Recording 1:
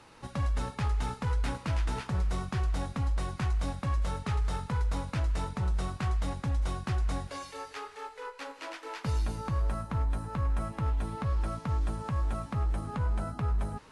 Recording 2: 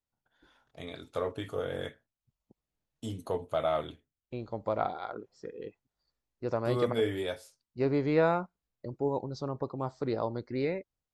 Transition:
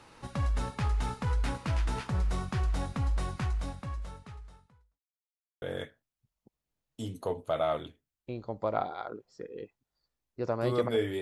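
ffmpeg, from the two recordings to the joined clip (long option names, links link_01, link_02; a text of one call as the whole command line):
ffmpeg -i cue0.wav -i cue1.wav -filter_complex "[0:a]apad=whole_dur=11.21,atrim=end=11.21,asplit=2[link_01][link_02];[link_01]atrim=end=5.01,asetpts=PTS-STARTPTS,afade=type=out:start_time=3.31:duration=1.7:curve=qua[link_03];[link_02]atrim=start=5.01:end=5.62,asetpts=PTS-STARTPTS,volume=0[link_04];[1:a]atrim=start=1.66:end=7.25,asetpts=PTS-STARTPTS,afade=type=in:duration=0.004:curve=hsin[link_05];[link_03][link_04][link_05]concat=n=3:v=0:a=1" out.wav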